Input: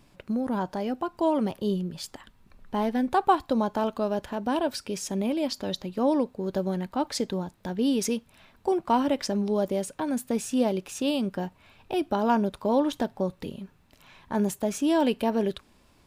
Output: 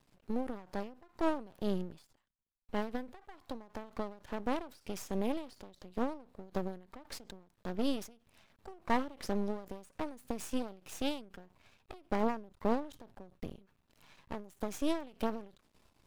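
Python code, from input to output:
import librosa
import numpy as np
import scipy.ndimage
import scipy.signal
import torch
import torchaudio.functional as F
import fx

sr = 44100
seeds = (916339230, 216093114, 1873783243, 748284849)

y = fx.low_shelf(x, sr, hz=110.0, db=11.5, at=(12.2, 13.62))
y = np.maximum(y, 0.0)
y = fx.end_taper(y, sr, db_per_s=130.0)
y = F.gain(torch.from_numpy(y), -3.5).numpy()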